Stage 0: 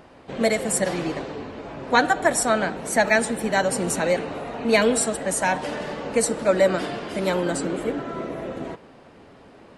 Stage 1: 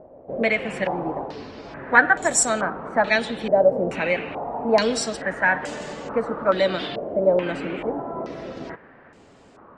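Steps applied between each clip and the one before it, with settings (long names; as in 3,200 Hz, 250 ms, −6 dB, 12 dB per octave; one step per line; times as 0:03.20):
low-pass on a step sequencer 2.3 Hz 600–7,400 Hz
level −3 dB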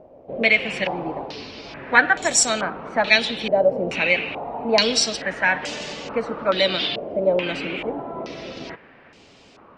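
flat-topped bell 3,700 Hz +11 dB
level −1 dB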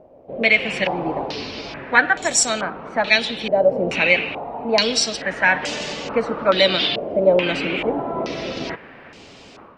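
automatic gain control gain up to 8 dB
level −1 dB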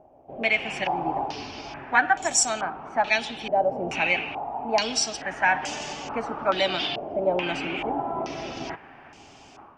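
thirty-one-band graphic EQ 200 Hz −7 dB, 500 Hz −11 dB, 800 Hz +9 dB, 2,000 Hz −4 dB, 4,000 Hz −9 dB, 6,300 Hz +4 dB
level −5 dB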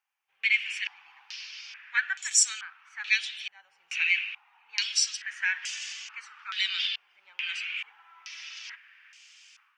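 inverse Chebyshev high-pass filter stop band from 690 Hz, stop band 50 dB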